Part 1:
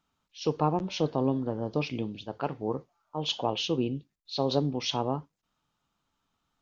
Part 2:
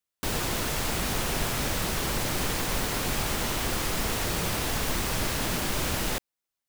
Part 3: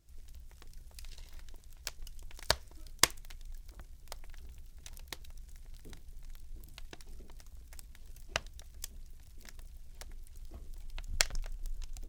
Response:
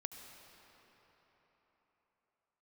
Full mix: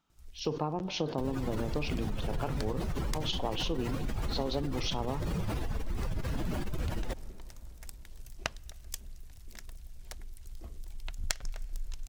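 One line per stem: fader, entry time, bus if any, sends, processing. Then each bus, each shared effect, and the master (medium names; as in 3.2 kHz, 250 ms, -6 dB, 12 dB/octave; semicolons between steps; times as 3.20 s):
-1.5 dB, 0.00 s, send -13 dB, decay stretcher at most 120 dB/s
-2.0 dB, 0.95 s, send -11.5 dB, spectral contrast enhancement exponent 2.1
+3.0 dB, 0.10 s, send -24 dB, auto duck -18 dB, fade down 1.20 s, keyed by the first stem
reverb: on, RT60 4.4 s, pre-delay 66 ms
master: compression 6:1, threshold -28 dBFS, peak gain reduction 11 dB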